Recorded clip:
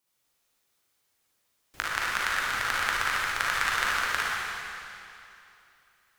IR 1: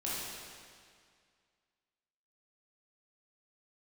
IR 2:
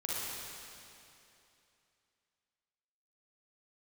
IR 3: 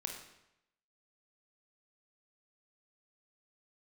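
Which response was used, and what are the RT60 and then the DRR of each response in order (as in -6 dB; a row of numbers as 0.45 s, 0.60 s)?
2; 2.1 s, 2.8 s, 0.85 s; -8.0 dB, -7.0 dB, 2.0 dB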